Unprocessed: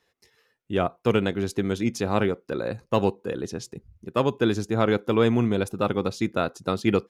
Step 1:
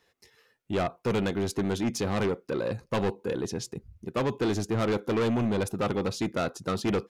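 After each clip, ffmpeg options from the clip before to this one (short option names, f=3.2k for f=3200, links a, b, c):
-af "asoftclip=type=tanh:threshold=-24.5dB,volume=2dB"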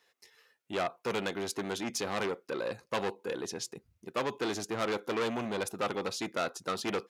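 -af "highpass=f=680:p=1"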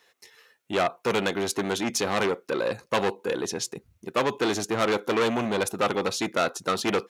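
-af "bandreject=f=4.9k:w=18,volume=8dB"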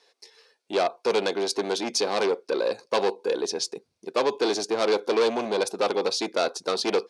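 -af "highpass=330,equalizer=f=430:t=q:w=4:g=4,equalizer=f=1.3k:t=q:w=4:g=-7,equalizer=f=1.9k:t=q:w=4:g=-8,equalizer=f=2.9k:t=q:w=4:g=-5,equalizer=f=4.7k:t=q:w=4:g=7,equalizer=f=7.2k:t=q:w=4:g=-6,lowpass=f=9.2k:w=0.5412,lowpass=f=9.2k:w=1.3066,volume=1.5dB"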